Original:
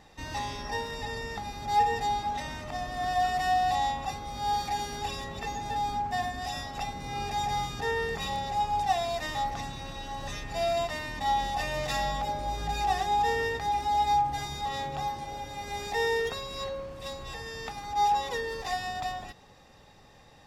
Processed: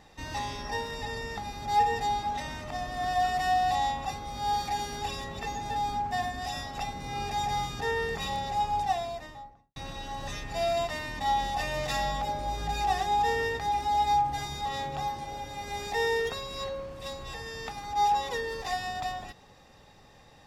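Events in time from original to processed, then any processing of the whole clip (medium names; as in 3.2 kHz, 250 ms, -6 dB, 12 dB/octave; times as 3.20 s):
8.64–9.76 s: studio fade out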